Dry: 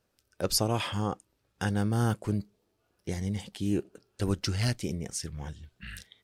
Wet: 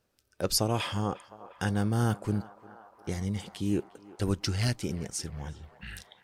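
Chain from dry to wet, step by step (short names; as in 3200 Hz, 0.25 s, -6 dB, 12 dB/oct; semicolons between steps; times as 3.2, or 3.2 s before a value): narrowing echo 0.354 s, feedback 83%, band-pass 920 Hz, level -15.5 dB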